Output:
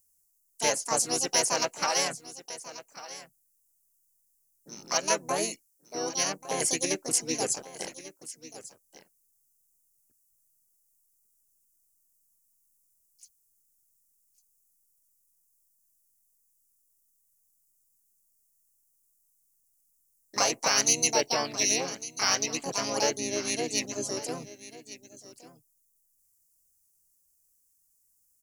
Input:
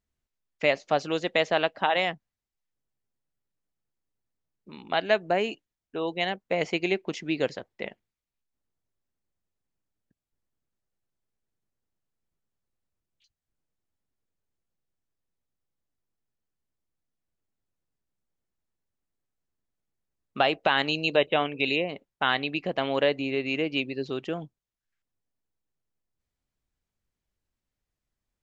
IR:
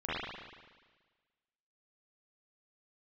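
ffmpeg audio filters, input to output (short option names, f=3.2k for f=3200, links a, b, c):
-filter_complex "[0:a]aecho=1:1:1145:0.158,asplit=3[a][b][c];[b]asetrate=35002,aresample=44100,atempo=1.25992,volume=-5dB[d];[c]asetrate=66075,aresample=44100,atempo=0.66742,volume=-2dB[e];[a][d][e]amix=inputs=3:normalize=0,aexciter=amount=14.5:drive=9.1:freq=5.7k,volume=-7.5dB"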